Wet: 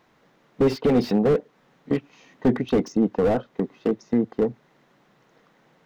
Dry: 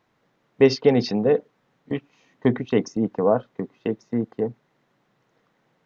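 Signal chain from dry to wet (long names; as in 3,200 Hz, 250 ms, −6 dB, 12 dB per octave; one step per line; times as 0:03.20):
in parallel at +2.5 dB: downward compressor 12 to 1, threshold −28 dBFS, peak gain reduction 18.5 dB
on the sum: parametric band 110 Hz −12 dB 0.22 octaves
slew-rate limiting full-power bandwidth 69 Hz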